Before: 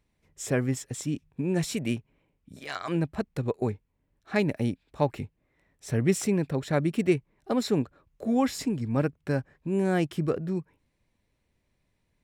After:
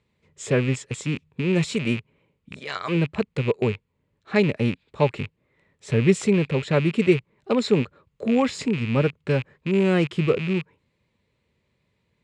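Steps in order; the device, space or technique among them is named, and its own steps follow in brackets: car door speaker with a rattle (rattle on loud lows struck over -41 dBFS, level -28 dBFS; cabinet simulation 89–7000 Hz, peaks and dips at 290 Hz -7 dB, 450 Hz +3 dB, 720 Hz -8 dB, 1.6 kHz -4 dB, 5.7 kHz -10 dB); trim +6.5 dB

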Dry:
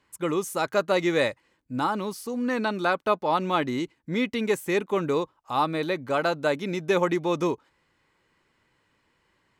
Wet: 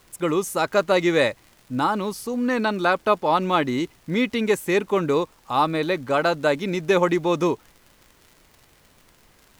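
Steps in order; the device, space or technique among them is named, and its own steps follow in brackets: vinyl LP (crackle 74 per s -42 dBFS; pink noise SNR 34 dB); trim +4 dB

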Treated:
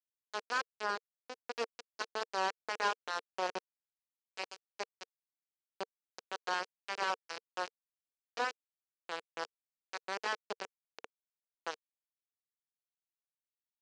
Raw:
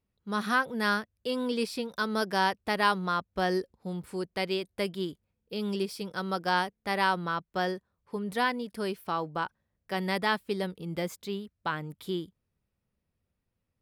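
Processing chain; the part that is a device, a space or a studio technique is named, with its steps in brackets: local Wiener filter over 15 samples; hand-held game console (bit crusher 4-bit; cabinet simulation 400–5500 Hz, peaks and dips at 460 Hz +7 dB, 1.2 kHz -3 dB, 2 kHz -5 dB, 3.5 kHz -7 dB); 0.83–1.39 s: tilt shelf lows +6 dB, about 1.3 kHz; trim -6.5 dB

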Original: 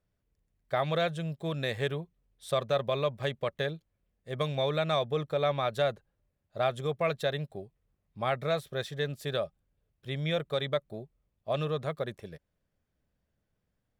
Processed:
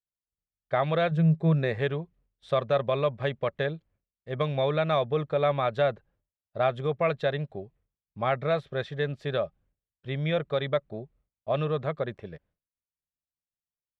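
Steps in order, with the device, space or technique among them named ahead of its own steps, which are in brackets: hearing-loss simulation (low-pass 2.8 kHz 12 dB/octave; expander -60 dBFS); 1.11–1.79 s: graphic EQ with 31 bands 160 Hz +11 dB, 400 Hz +6 dB, 3.15 kHz -10 dB; trim +3.5 dB

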